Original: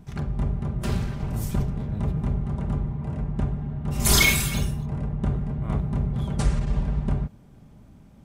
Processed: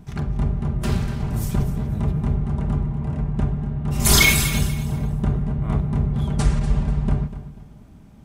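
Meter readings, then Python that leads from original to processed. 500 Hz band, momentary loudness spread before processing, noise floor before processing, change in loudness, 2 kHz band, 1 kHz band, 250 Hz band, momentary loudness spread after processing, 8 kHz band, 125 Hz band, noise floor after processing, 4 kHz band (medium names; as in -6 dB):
+3.0 dB, 10 LU, -50 dBFS, +4.0 dB, +3.5 dB, +3.5 dB, +4.0 dB, 10 LU, +3.5 dB, +4.0 dB, -45 dBFS, +3.5 dB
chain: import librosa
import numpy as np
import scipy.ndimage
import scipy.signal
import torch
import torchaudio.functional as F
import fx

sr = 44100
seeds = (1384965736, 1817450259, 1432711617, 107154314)

p1 = fx.notch(x, sr, hz=540.0, q=12.0)
p2 = p1 + fx.echo_feedback(p1, sr, ms=244, feedback_pct=29, wet_db=-13.5, dry=0)
y = p2 * 10.0 ** (3.5 / 20.0)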